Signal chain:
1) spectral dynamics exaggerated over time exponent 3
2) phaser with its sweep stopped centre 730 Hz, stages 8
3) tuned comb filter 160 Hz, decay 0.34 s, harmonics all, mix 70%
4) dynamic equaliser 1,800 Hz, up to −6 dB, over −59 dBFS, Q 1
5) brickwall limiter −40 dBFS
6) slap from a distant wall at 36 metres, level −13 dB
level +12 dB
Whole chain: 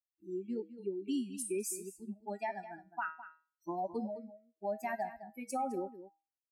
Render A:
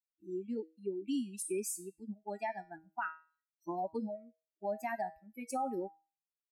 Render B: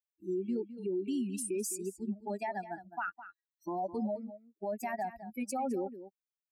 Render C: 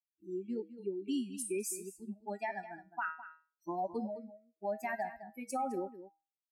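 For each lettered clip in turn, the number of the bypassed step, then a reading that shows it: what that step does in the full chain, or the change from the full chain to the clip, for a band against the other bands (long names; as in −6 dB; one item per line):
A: 6, change in momentary loudness spread −1 LU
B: 3, 125 Hz band +4.5 dB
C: 4, 2 kHz band +2.5 dB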